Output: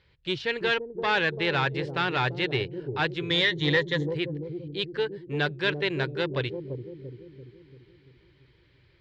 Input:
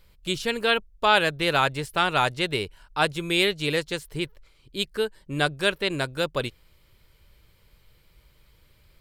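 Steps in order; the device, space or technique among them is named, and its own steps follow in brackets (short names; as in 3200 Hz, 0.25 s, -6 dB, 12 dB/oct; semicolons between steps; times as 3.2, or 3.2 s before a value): 3.3–4.07 ripple EQ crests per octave 1.1, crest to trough 16 dB; analogue delay pedal into a guitar amplifier (analogue delay 0.339 s, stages 1024, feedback 56%, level -5 dB; tube stage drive 17 dB, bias 0.4; speaker cabinet 75–4400 Hz, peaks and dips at 120 Hz +5 dB, 220 Hz -10 dB, 380 Hz +3 dB, 650 Hz -6 dB, 1200 Hz -5 dB, 1800 Hz +6 dB)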